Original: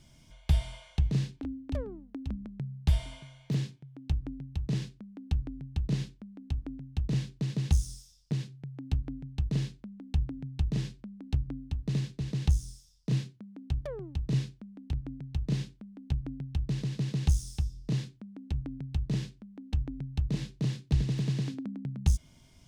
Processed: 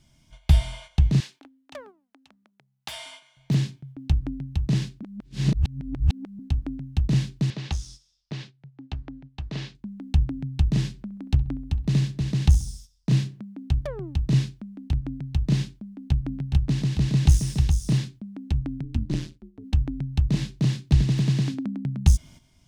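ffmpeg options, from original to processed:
-filter_complex "[0:a]asettb=1/sr,asplit=3[s0][s1][s2];[s0]atrim=end=1.204[s3];[s1]atrim=start=1.2:end=3.37,asetpts=PTS-STARTPTS,afade=t=in:d=0.004:c=qsin,afade=t=out:st=2.166:d=0.004:c=qsin,highpass=770[s4];[s2]atrim=start=3.366[s5];[s3][s4]acrossfade=d=0.004:c1=hsin:c2=qsin[s6];[s6][s5]acrossfade=d=0.004:c1=qsin:c2=hsin,asettb=1/sr,asplit=3[s7][s8][s9];[s7]atrim=end=7.504[s10];[s8]atrim=start=7.5:end=9.75,asetpts=PTS-STARTPTS,afade=t=in:d=0.004:c=qsin,afade=t=out:st=2.246:d=0.004:c=qsin,acrossover=split=390 5500:gain=0.251 1 0.0891[s11][s12][s13];[s11][s12][s13]amix=inputs=3:normalize=0[s14];[s9]atrim=start=9.746[s15];[s10][s14]acrossfade=d=0.004:c1=hsin:c2=qsin[s16];[s16][s15]acrossfade=d=0.004:c1=qsin:c2=hsin,asettb=1/sr,asplit=3[s17][s18][s19];[s17]atrim=end=10.884[s20];[s18]atrim=start=10.88:end=13.43,asetpts=PTS-STARTPTS,afade=t=in:d=0.004:c=qsin,afade=t=out:st=2.546:d=0.004:c=qsin,asplit=2[s21][s22];[s22]adelay=66,lowpass=f=1700:p=1,volume=0.141,asplit=2[s23][s24];[s24]adelay=66,lowpass=f=1700:p=1,volume=0.46,asplit=2[s25][s26];[s26]adelay=66,lowpass=f=1700:p=1,volume=0.46,asplit=2[s27][s28];[s28]adelay=66,lowpass=f=1700:p=1,volume=0.46[s29];[s21][s23][s25][s27][s29]amix=inputs=5:normalize=0,atrim=end_sample=112455[s30];[s19]atrim=start=13.426[s31];[s20][s30]acrossfade=d=0.004:c1=hsin:c2=qsin[s32];[s32][s31]acrossfade=d=0.004:c1=qsin:c2=hsin,asettb=1/sr,asplit=3[s33][s34][s35];[s33]atrim=end=15.874[s36];[s34]atrim=start=15.87:end=17.98,asetpts=PTS-STARTPTS,afade=t=in:d=0.004:c=qsin,afade=t=out:st=2.106:d=0.004:c=qsin,aecho=1:1:418:0.531,atrim=end_sample=93051[s37];[s35]atrim=start=17.976[s38];[s36][s37]acrossfade=d=0.004:c1=hsin:c2=qsin[s39];[s39][s38]acrossfade=d=0.004:c1=qsin:c2=hsin,asplit=3[s40][s41][s42];[s40]afade=t=out:st=18.82:d=0.02[s43];[s41]tremolo=f=160:d=0.974,afade=t=in:st=18.82:d=0.02,afade=t=out:st=19.63:d=0.02[s44];[s42]afade=t=in:st=19.63:d=0.02[s45];[s43][s44][s45]amix=inputs=3:normalize=0,asplit=3[s46][s47][s48];[s46]atrim=end=5.032[s49];[s47]atrim=start=5.028:end=6.392,asetpts=PTS-STARTPTS,areverse[s50];[s48]atrim=start=6.388[s51];[s49][s50]acrossfade=d=0.004:c1=hsin:c2=hsin[s52];[s52][s51]acrossfade=d=0.004:c1=hsin:c2=hsin,agate=range=0.316:threshold=0.00282:ratio=16:detection=peak,equalizer=f=470:t=o:w=0.34:g=-7.5,volume=2.51"

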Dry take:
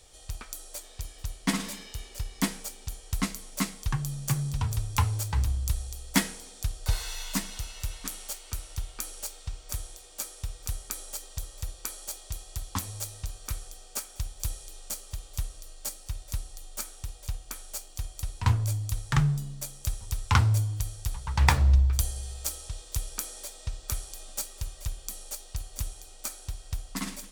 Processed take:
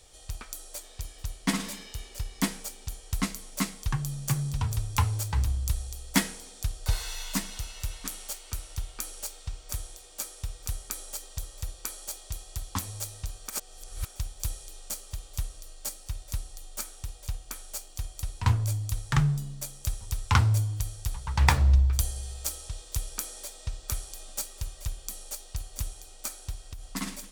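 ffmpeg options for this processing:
-filter_complex "[0:a]asettb=1/sr,asplit=3[s0][s1][s2];[s0]atrim=end=26.554[s3];[s1]atrim=start=26.55:end=26.95,asetpts=PTS-STARTPTS,afade=t=in:d=0.004:c=qsin,afade=t=out:st=0.396:d=0.004:c=qsin,acompressor=threshold=0.0178:ratio=12:attack=3.2:release=140:knee=1:detection=peak[s4];[s2]atrim=start=26.946[s5];[s3][s4]acrossfade=d=0.004:c1=hsin:c2=qsin[s6];[s6][s5]acrossfade=d=0.004:c1=qsin:c2=hsin,asplit=3[s7][s8][s9];[s7]atrim=end=13.502[s10];[s8]atrim=start=13.498:end=14.052,asetpts=PTS-STARTPTS,areverse[s11];[s9]atrim=start=14.048[s12];[s10][s11]acrossfade=d=0.004:c1=hsin:c2=hsin[s13];[s13][s12]acrossfade=d=0.004:c1=hsin:c2=hsin"

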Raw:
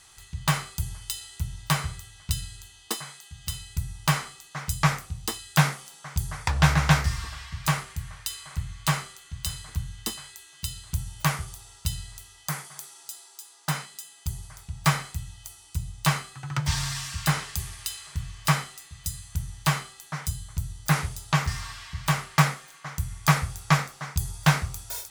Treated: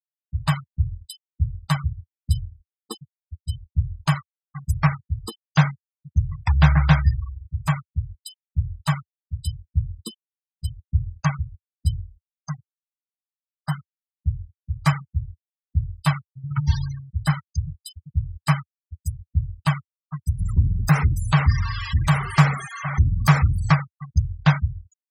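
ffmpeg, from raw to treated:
-filter_complex "[0:a]asplit=2[s0][s1];[s1]afade=t=in:st=17.24:d=0.01,afade=t=out:st=17.79:d=0.01,aecho=0:1:390|780|1170|1560:0.158489|0.0713202|0.0320941|0.0144423[s2];[s0][s2]amix=inputs=2:normalize=0,asettb=1/sr,asplit=3[s3][s4][s5];[s3]atrim=end=20.394[s6];[s4]atrim=start=20.39:end=23.72,asetpts=PTS-STARTPTS,afade=t=in:d=0.004:c=qsin,afade=t=out:st=3.326:d=0.004:c=qsin,aeval=exprs='val(0)+0.5*0.0708*sgn(val(0))':c=same[s7];[s5]atrim=start=23.716[s8];[s6][s7]acrossfade=d=0.004:c1=hsin:c2=qsin[s9];[s9][s8]acrossfade=d=0.004:c1=qsin:c2=hsin,afftfilt=real='re*gte(hypot(re,im),0.0708)':imag='im*gte(hypot(re,im),0.0708)':win_size=1024:overlap=0.75,equalizer=f=86:w=1:g=10"

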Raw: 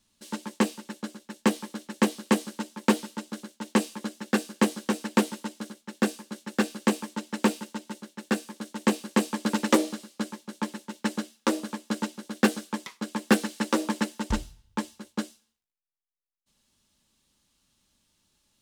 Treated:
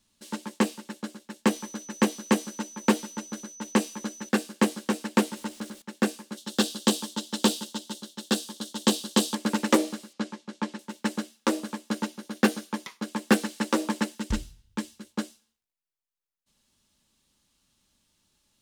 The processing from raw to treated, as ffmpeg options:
-filter_complex "[0:a]asettb=1/sr,asplit=3[s0][s1][s2];[s0]atrim=end=1.504[s3];[s1]atrim=start=1.5:end=4.29,asetpts=PTS-STARTPTS,afade=t=in:d=0.004:c=qsin,afade=t=out:st=2.786:d=0.004:c=qsin,aeval=exprs='val(0)+0.00631*sin(2*PI*6000*n/s)':c=same[s4];[s2]atrim=start=4.286[s5];[s3][s4]acrossfade=d=0.004:c1=hsin:c2=qsin[s6];[s6][s5]acrossfade=d=0.004:c1=qsin:c2=hsin,asettb=1/sr,asplit=3[s7][s8][s9];[s7]atrim=end=5.364[s10];[s8]atrim=start=5.36:end=5.82,asetpts=PTS-STARTPTS,afade=t=in:d=0.004:c=qsin,afade=t=out:st=0.456:d=0.004:c=qsin,aeval=exprs='val(0)+0.5*0.00447*sgn(val(0))':c=same[s11];[s9]atrim=start=5.816[s12];[s10][s11]acrossfade=d=0.004:c1=hsin:c2=qsin[s13];[s13][s12]acrossfade=d=0.004:c1=qsin:c2=hsin,asettb=1/sr,asplit=3[s14][s15][s16];[s14]atrim=end=6.374[s17];[s15]atrim=start=6.37:end=9.35,asetpts=PTS-STARTPTS,afade=t=in:d=0.004:c=qsin,afade=t=out:st=2.976:d=0.004:c=qsin,highshelf=f=2800:t=q:w=3:g=6.5[s18];[s16]atrim=start=9.346[s19];[s17][s18]acrossfade=d=0.004:c1=hsin:c2=qsin[s20];[s20][s19]acrossfade=d=0.004:c1=qsin:c2=hsin,asettb=1/sr,asplit=3[s21][s22][s23];[s21]atrim=end=10.134[s24];[s22]atrim=start=10.13:end=10.79,asetpts=PTS-STARTPTS,afade=t=in:d=0.004:c=qsin,afade=t=out:st=0.656:d=0.004:c=qsin,lowpass=6200[s25];[s23]atrim=start=10.786[s26];[s24][s25]acrossfade=d=0.004:c1=hsin:c2=qsin[s27];[s27][s26]acrossfade=d=0.004:c1=qsin:c2=hsin,asettb=1/sr,asplit=3[s28][s29][s30];[s28]atrim=end=11.924[s31];[s29]atrim=start=11.92:end=13.08,asetpts=PTS-STARTPTS,afade=t=in:d=0.004:c=qsin,afade=t=out:st=1.156:d=0.004:c=qsin,bandreject=f=7800:w=11[s32];[s30]atrim=start=13.076[s33];[s31][s32]acrossfade=d=0.004:c1=hsin:c2=qsin[s34];[s34][s33]acrossfade=d=0.004:c1=qsin:c2=hsin,asettb=1/sr,asplit=3[s35][s36][s37];[s35]atrim=end=14.154[s38];[s36]atrim=start=14.15:end=15.1,asetpts=PTS-STARTPTS,afade=t=in:d=0.004:c=qsin,afade=t=out:st=0.946:d=0.004:c=qsin,equalizer=f=820:t=o:w=1.3:g=-8[s39];[s37]atrim=start=15.096[s40];[s38][s39]acrossfade=d=0.004:c1=hsin:c2=qsin[s41];[s41][s40]acrossfade=d=0.004:c1=qsin:c2=hsin"

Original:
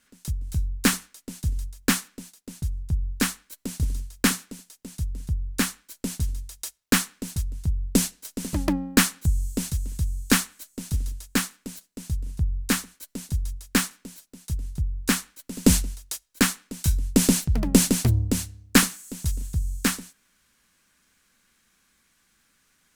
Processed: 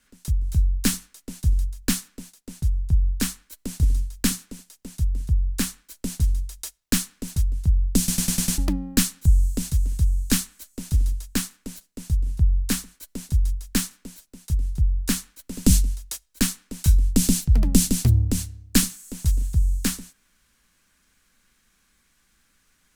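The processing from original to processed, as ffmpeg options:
-filter_complex "[0:a]asplit=7[s0][s1][s2][s3][s4][s5][s6];[s0]atrim=end=8.082[s7];[s1]atrim=start=7.978:end=8.082[s8];[s2]atrim=start=7.978:end=8.082[s9];[s3]atrim=start=7.978:end=8.082[s10];[s4]atrim=start=7.978:end=8.082[s11];[s5]atrim=start=7.978:end=8.082[s12];[s6]atrim=start=8.578[s13];[s7][s8]acrossfade=d=0.004:c1=hsin:c2=hsin[s14];[s14][s9]acrossfade=d=0.004:c1=hsin:c2=hsin[s15];[s15][s10]acrossfade=d=0.004:c1=hsin:c2=hsin[s16];[s16][s11]acrossfade=d=0.004:c1=hsin:c2=hsin[s17];[s17][s12]acrossfade=d=0.004:c1=hsin:c2=hsin[s18];[s18][s13]acrossfade=d=0.004:c1=hsin:c2=hsin,lowshelf=f=64:g=11.5,acrossover=split=280|3000[s19][s20][s21];[s20]acompressor=threshold=0.0158:ratio=3[s22];[s19][s22][s21]amix=inputs=3:normalize=0"

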